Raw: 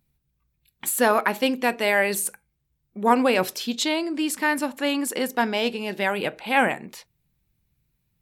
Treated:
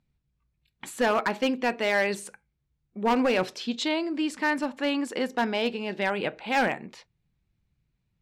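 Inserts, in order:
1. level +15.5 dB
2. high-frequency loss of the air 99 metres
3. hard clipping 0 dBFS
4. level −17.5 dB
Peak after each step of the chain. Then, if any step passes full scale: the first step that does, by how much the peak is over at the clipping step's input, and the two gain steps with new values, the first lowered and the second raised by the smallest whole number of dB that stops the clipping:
+10.0, +9.5, 0.0, −17.5 dBFS
step 1, 9.5 dB
step 1 +5.5 dB, step 4 −7.5 dB

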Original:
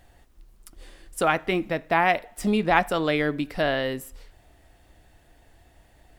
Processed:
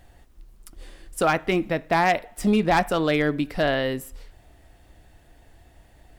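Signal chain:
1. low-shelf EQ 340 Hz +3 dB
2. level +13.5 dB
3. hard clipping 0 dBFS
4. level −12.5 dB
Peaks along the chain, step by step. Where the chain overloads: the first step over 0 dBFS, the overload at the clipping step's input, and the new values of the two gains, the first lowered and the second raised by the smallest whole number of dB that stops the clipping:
−3.5, +10.0, 0.0, −12.5 dBFS
step 2, 10.0 dB
step 2 +3.5 dB, step 4 −2.5 dB

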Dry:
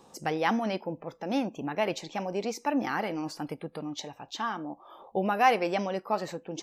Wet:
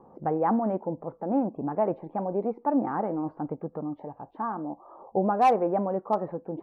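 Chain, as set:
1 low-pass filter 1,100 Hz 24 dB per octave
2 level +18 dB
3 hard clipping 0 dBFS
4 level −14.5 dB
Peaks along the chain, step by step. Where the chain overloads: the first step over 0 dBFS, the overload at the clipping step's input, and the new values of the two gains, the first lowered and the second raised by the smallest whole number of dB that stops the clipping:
−13.5, +4.5, 0.0, −14.5 dBFS
step 2, 4.5 dB
step 2 +13 dB, step 4 −9.5 dB

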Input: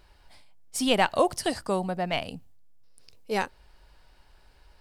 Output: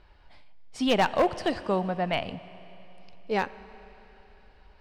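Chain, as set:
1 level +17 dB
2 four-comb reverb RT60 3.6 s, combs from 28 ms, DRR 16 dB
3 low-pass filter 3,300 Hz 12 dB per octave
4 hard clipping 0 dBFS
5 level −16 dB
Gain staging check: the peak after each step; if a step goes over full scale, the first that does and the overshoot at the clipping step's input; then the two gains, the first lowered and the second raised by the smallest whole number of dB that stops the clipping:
+8.5, +9.0, +8.5, 0.0, −16.0 dBFS
step 1, 8.5 dB
step 1 +8 dB, step 5 −7 dB

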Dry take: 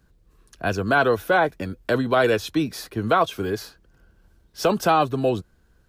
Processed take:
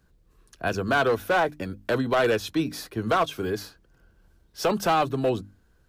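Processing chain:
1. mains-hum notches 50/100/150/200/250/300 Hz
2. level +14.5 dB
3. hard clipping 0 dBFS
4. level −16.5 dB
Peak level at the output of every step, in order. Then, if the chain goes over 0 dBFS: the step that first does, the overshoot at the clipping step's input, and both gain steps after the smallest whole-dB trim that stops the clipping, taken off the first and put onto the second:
−8.0, +6.5, 0.0, −16.5 dBFS
step 2, 6.5 dB
step 2 +7.5 dB, step 4 −9.5 dB

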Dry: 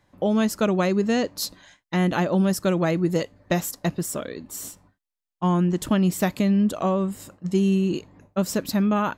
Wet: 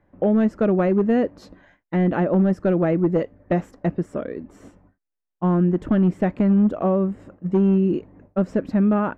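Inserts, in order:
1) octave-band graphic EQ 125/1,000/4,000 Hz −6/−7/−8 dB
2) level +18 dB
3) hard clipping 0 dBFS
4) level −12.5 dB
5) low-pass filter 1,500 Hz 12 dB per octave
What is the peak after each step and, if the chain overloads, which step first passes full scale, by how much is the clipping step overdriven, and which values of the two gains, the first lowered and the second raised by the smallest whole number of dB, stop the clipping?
−11.5, +6.5, 0.0, −12.5, −12.0 dBFS
step 2, 6.5 dB
step 2 +11 dB, step 4 −5.5 dB

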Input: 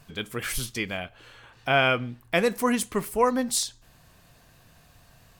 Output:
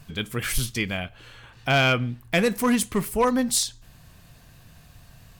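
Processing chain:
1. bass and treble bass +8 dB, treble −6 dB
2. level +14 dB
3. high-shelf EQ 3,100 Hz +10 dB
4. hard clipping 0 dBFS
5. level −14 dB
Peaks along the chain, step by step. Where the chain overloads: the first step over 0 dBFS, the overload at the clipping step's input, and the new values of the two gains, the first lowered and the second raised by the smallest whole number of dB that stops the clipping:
−9.0, +5.0, +7.0, 0.0, −14.0 dBFS
step 2, 7.0 dB
step 2 +7 dB, step 5 −7 dB

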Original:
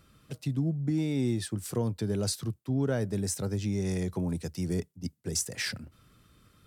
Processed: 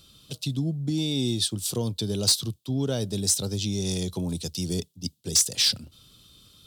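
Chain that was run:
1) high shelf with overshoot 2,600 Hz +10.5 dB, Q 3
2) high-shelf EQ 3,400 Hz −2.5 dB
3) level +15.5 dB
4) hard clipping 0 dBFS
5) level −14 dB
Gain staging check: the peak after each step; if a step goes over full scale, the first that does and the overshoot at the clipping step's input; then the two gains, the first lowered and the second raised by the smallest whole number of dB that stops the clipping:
−5.0, −7.0, +8.5, 0.0, −14.0 dBFS
step 3, 8.5 dB
step 3 +6.5 dB, step 5 −5 dB

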